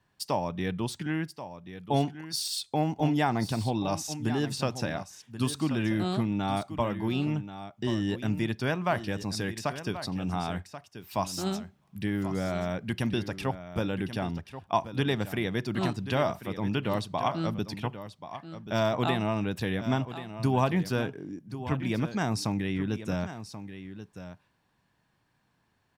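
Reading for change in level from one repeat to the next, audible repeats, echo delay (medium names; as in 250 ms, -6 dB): no regular repeats, 1, 1083 ms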